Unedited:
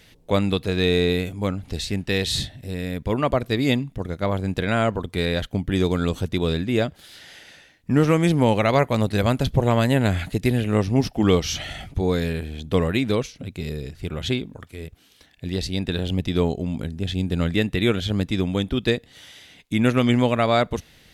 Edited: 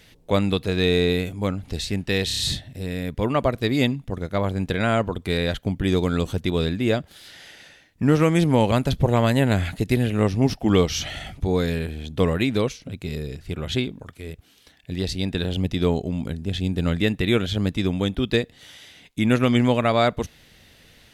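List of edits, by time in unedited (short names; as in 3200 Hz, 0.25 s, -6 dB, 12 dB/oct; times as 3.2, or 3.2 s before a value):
2.27 stutter 0.03 s, 5 plays
8.59–9.25 cut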